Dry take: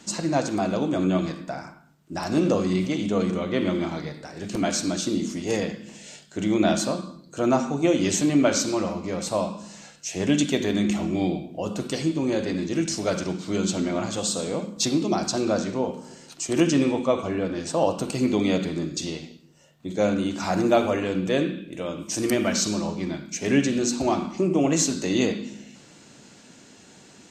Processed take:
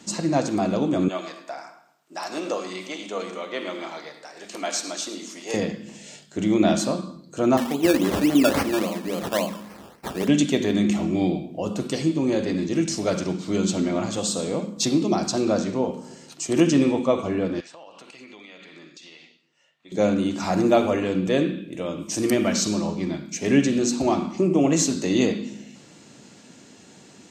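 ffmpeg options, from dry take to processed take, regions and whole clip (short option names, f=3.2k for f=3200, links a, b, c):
-filter_complex "[0:a]asettb=1/sr,asplit=3[a][b][c];[a]atrim=end=1.084[d];[b]atrim=start=1.08:end=5.54,asetpts=PTS-STARTPTS,afade=t=in:d=0.004:c=qsin,afade=t=out:st=4.456:d=0.004:c=qsin,highpass=630,aecho=1:1:107|214|321|428:0.168|0.0672|0.0269|0.0107,atrim=end_sample=196686[e];[c]atrim=start=5.536[f];[d][e]acrossfade=d=0.004:c1=hsin:c2=qsin[g];[g][f]acrossfade=d=0.004:c1=qsin:c2=hsin,asettb=1/sr,asplit=3[h][i][j];[h]atrim=end=7.574[k];[i]atrim=start=7.57:end=10.28,asetpts=PTS-STARTPTS,afade=t=in:d=0.004:c=qsin,afade=t=out:st=2.706:d=0.004:c=qsin,highpass=f=180:w=0.5412,highpass=f=180:w=1.3066,acrusher=samples=17:mix=1:aa=0.000001:lfo=1:lforange=10.2:lforate=3.6[l];[j]atrim=start=10.276[m];[k][l]acrossfade=d=0.004:c1=hsin:c2=qsin[n];[n][m]acrossfade=d=0.004:c1=qsin:c2=hsin,asettb=1/sr,asplit=3[o][p][q];[o]atrim=end=17.604[r];[p]atrim=start=17.6:end=19.92,asetpts=PTS-STARTPTS,afade=t=in:d=0.004:c=qsin,afade=t=out:st=2.316:d=0.004:c=qsin,bandpass=f=2.2k:t=q:w=1.2,acompressor=threshold=-42dB:ratio=6:attack=3.2:release=140:knee=1:detection=peak[s];[q]atrim=start=19.916[t];[r][s]acrossfade=d=0.004:c1=hsin:c2=qsin[u];[u][t]acrossfade=d=0.004:c1=qsin:c2=hsin,highpass=56,equalizer=f=250:w=0.54:g=2.5,bandreject=f=1.5k:w=21"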